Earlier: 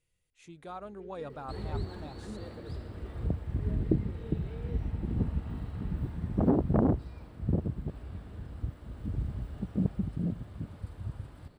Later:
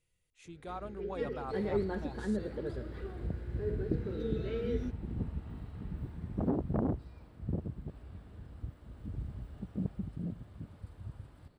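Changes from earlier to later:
first sound +11.0 dB; second sound -6.5 dB

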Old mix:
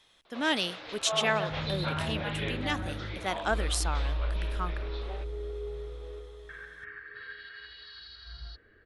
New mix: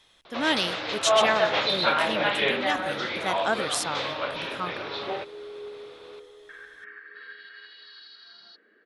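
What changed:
speech +3.0 dB; first sound +12.0 dB; second sound: add steep high-pass 190 Hz 48 dB/oct

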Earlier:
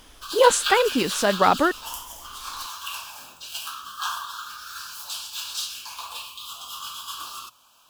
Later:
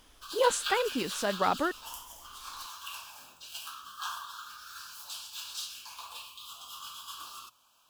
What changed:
speech -9.5 dB; background -8.5 dB

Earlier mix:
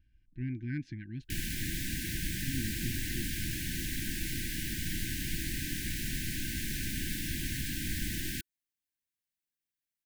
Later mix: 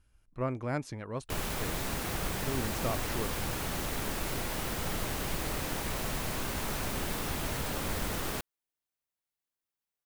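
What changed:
speech: remove air absorption 240 m; master: remove brick-wall FIR band-stop 360–1500 Hz

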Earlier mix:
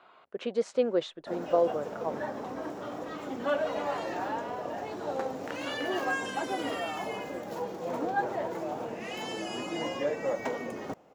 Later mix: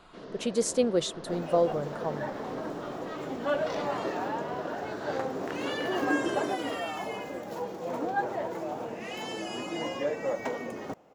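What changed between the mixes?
speech: remove BPF 300–2600 Hz; first sound: unmuted

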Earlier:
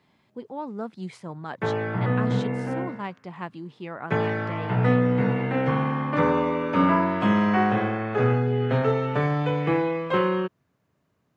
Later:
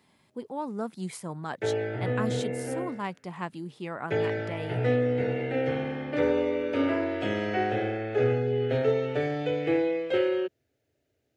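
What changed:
speech: remove LPF 4400 Hz 12 dB/oct; background: add fixed phaser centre 440 Hz, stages 4

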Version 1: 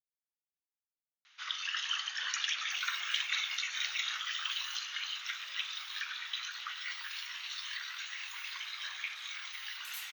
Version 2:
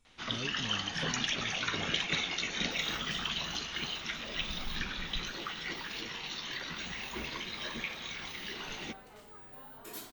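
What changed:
speech: unmuted; first sound: entry -1.20 s; master: remove Chebyshev high-pass 1300 Hz, order 3

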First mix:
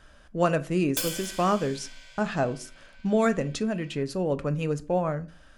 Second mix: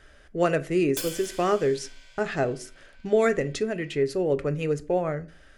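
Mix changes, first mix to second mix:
speech: add thirty-one-band EQ 200 Hz -9 dB, 400 Hz +9 dB, 1000 Hz -7 dB, 2000 Hz +8 dB; background -3.5 dB

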